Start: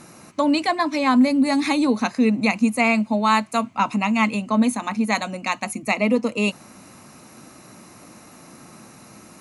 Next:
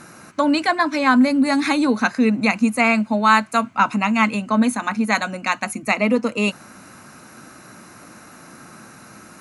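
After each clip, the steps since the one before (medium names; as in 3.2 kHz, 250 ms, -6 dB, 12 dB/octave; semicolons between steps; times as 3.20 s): peaking EQ 1.5 kHz +11 dB 0.41 oct; trim +1 dB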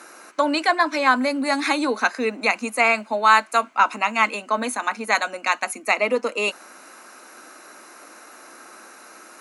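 high-pass 340 Hz 24 dB/octave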